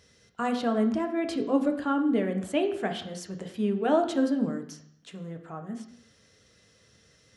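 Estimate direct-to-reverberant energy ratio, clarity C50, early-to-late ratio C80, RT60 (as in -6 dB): 4.5 dB, 10.0 dB, 12.5 dB, 0.70 s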